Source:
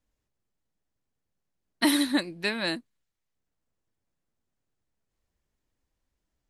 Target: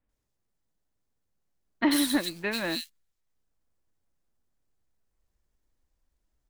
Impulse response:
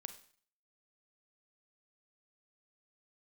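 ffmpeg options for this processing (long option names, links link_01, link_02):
-filter_complex "[0:a]acrusher=bits=3:mode=log:mix=0:aa=0.000001,acrossover=split=2700[link_01][link_02];[link_02]adelay=90[link_03];[link_01][link_03]amix=inputs=2:normalize=0,asubboost=boost=2:cutoff=71"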